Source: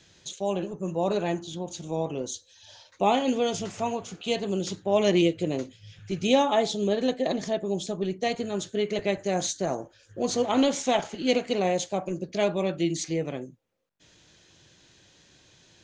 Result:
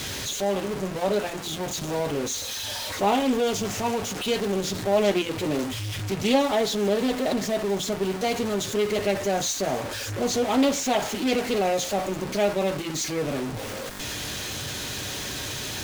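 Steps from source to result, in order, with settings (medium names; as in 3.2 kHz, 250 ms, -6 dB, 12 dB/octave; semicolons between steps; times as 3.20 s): jump at every zero crossing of -25 dBFS; comb of notches 170 Hz; loudspeaker Doppler distortion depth 0.22 ms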